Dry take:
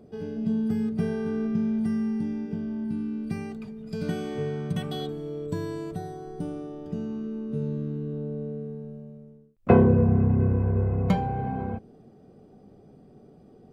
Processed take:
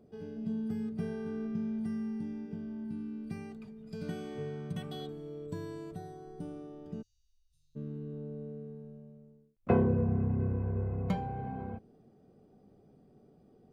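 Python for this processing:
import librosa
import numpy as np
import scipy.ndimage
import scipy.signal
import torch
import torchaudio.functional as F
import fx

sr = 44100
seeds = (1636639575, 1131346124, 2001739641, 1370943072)

y = fx.cheby2_bandstop(x, sr, low_hz=200.0, high_hz=1200.0, order=4, stop_db=70, at=(7.01, 7.75), fade=0.02)
y = F.gain(torch.from_numpy(y), -9.0).numpy()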